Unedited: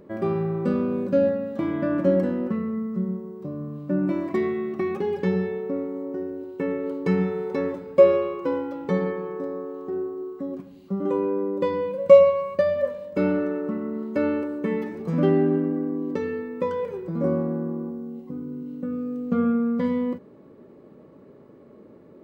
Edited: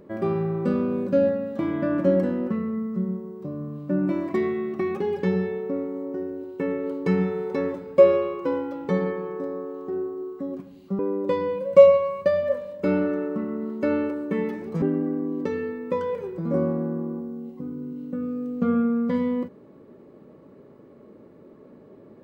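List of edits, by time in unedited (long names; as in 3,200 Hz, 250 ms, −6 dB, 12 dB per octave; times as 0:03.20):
0:10.99–0:11.32: remove
0:15.15–0:15.52: remove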